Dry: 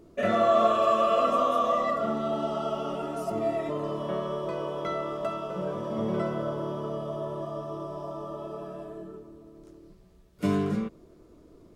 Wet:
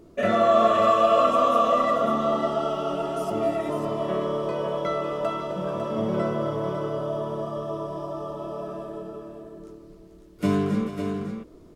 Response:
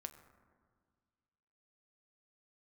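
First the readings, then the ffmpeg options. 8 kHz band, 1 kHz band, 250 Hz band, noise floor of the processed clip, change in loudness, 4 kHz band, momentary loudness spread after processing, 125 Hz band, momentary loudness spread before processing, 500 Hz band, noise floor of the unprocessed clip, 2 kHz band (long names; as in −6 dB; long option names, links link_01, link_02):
can't be measured, +4.0 dB, +4.0 dB, −50 dBFS, +4.0 dB, +4.0 dB, 16 LU, +3.5 dB, 15 LU, +4.0 dB, −55 dBFS, +4.0 dB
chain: -af "aecho=1:1:262|440|551:0.211|0.237|0.422,volume=3dB"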